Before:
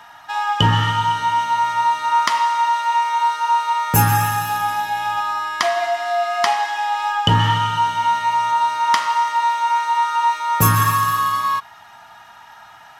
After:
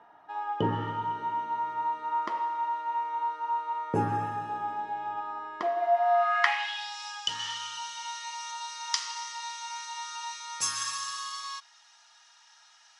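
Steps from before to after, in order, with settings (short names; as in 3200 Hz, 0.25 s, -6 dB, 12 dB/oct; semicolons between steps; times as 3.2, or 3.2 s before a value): band-pass sweep 390 Hz -> 5600 Hz, 5.77–6.96; gain +1.5 dB; MP3 112 kbps 24000 Hz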